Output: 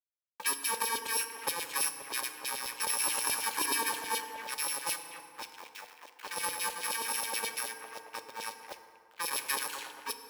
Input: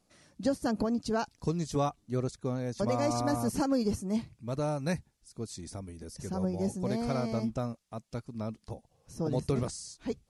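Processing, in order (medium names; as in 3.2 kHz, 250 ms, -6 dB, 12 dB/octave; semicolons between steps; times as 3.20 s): bit-reversed sample order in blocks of 64 samples; level-controlled noise filter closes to 1.8 kHz, open at -28.5 dBFS; modulation noise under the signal 18 dB; on a send: bucket-brigade echo 240 ms, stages 4096, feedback 49%, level -11 dB; on the sum: crossover distortion -44 dBFS; LFO high-pass saw down 9.4 Hz 560–3700 Hz; FDN reverb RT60 2.1 s, low-frequency decay 1×, high-frequency decay 0.5×, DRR 8 dB; in parallel at +1.5 dB: compression, threshold -45 dBFS, peak gain reduction 16 dB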